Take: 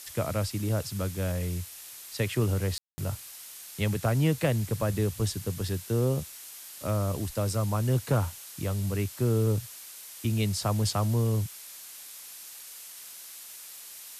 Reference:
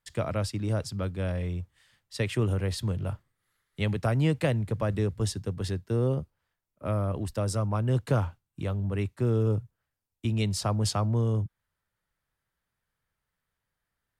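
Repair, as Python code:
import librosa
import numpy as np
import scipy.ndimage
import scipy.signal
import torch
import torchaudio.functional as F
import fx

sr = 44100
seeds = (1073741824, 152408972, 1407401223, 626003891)

y = fx.fix_declip(x, sr, threshold_db=-15.5)
y = fx.fix_ambience(y, sr, seeds[0], print_start_s=11.59, print_end_s=12.09, start_s=2.78, end_s=2.98)
y = fx.noise_reduce(y, sr, print_start_s=11.59, print_end_s=12.09, reduce_db=30.0)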